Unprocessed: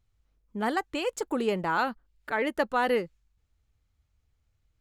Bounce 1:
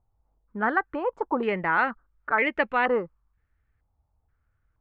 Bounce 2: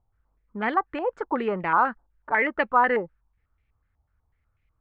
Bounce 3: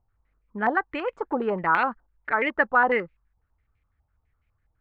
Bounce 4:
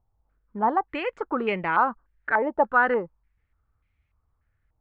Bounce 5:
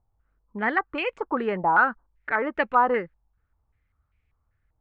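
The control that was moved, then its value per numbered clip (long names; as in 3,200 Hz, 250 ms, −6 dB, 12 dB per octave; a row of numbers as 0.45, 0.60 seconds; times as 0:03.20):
low-pass on a step sequencer, speed: 2.1, 8.1, 12, 3.4, 5.1 Hertz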